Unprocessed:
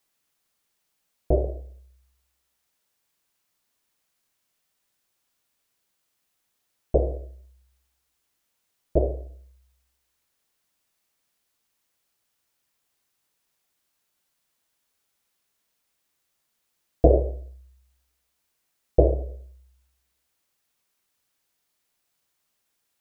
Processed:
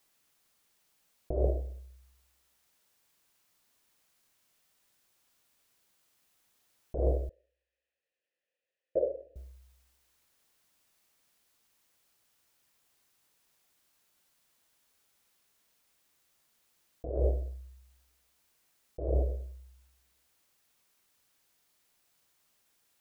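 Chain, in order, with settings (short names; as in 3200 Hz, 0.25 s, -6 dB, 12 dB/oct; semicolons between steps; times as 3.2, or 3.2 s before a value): 7.29–9.36 vowel filter e; negative-ratio compressor -27 dBFS, ratio -1; gain -2 dB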